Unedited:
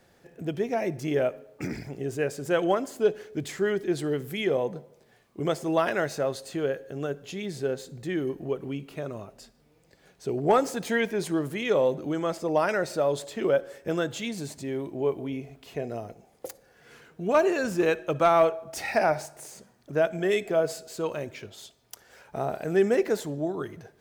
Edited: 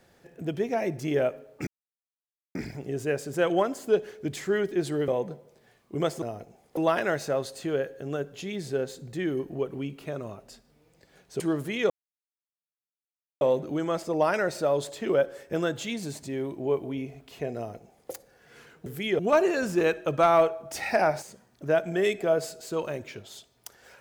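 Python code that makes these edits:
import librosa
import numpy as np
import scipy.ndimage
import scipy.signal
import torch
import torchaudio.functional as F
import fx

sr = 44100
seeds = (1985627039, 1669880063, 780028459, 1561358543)

y = fx.edit(x, sr, fx.insert_silence(at_s=1.67, length_s=0.88),
    fx.move(start_s=4.2, length_s=0.33, to_s=17.21),
    fx.cut(start_s=10.3, length_s=0.96),
    fx.insert_silence(at_s=11.76, length_s=1.51),
    fx.duplicate(start_s=15.91, length_s=0.55, to_s=5.67),
    fx.cut(start_s=19.24, length_s=0.25), tone=tone)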